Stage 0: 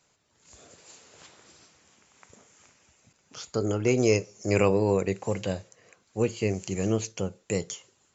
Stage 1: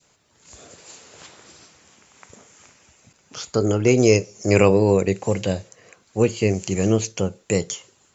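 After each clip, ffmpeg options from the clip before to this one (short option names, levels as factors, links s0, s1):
-af "adynamicequalizer=threshold=0.00891:dfrequency=1200:dqfactor=0.91:tfrequency=1200:tqfactor=0.91:attack=5:release=100:ratio=0.375:range=3:mode=cutabove:tftype=bell,volume=2.37"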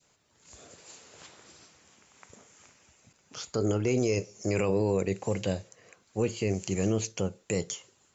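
-af "alimiter=limit=0.316:level=0:latency=1:release=23,volume=0.473"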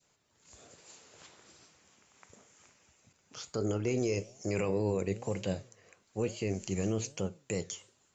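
-af "flanger=delay=4.6:depth=7.2:regen=90:speed=1.1:shape=triangular"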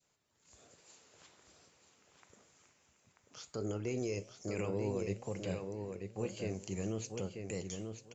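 -filter_complex "[0:a]asplit=2[s0][s1];[s1]adelay=938,lowpass=f=4500:p=1,volume=0.531,asplit=2[s2][s3];[s3]adelay=938,lowpass=f=4500:p=1,volume=0.18,asplit=2[s4][s5];[s5]adelay=938,lowpass=f=4500:p=1,volume=0.18[s6];[s0][s2][s4][s6]amix=inputs=4:normalize=0,volume=0.501"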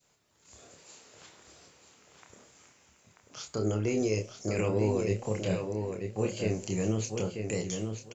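-filter_complex "[0:a]asplit=2[s0][s1];[s1]adelay=28,volume=0.531[s2];[s0][s2]amix=inputs=2:normalize=0,volume=2.24"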